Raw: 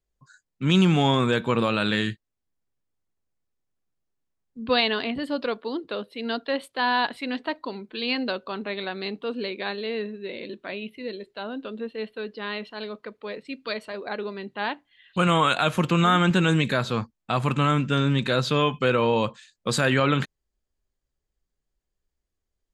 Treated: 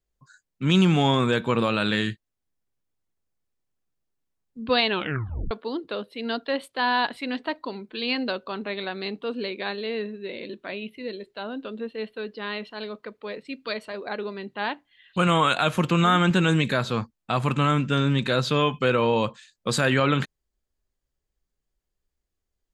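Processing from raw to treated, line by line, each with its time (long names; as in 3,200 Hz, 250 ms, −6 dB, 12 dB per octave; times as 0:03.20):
0:04.89: tape stop 0.62 s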